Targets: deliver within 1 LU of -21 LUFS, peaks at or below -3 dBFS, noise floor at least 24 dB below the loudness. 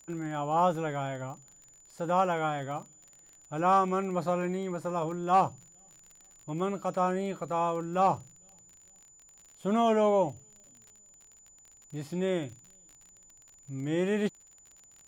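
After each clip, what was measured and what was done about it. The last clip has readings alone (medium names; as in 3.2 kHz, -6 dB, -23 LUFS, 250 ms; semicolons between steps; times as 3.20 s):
tick rate 38 per s; steady tone 7 kHz; tone level -55 dBFS; loudness -30.0 LUFS; peak level -15.0 dBFS; loudness target -21.0 LUFS
-> de-click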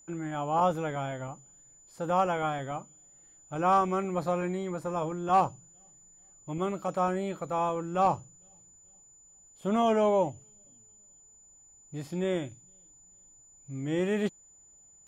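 tick rate 0.066 per s; steady tone 7 kHz; tone level -55 dBFS
-> band-stop 7 kHz, Q 30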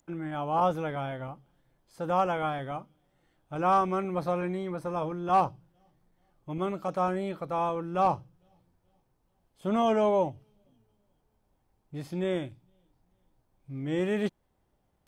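steady tone not found; loudness -30.0 LUFS; peak level -13.0 dBFS; loudness target -21.0 LUFS
-> trim +9 dB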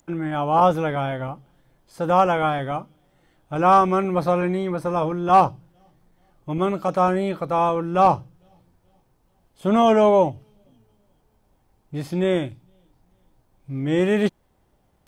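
loudness -21.0 LUFS; peak level -4.0 dBFS; noise floor -65 dBFS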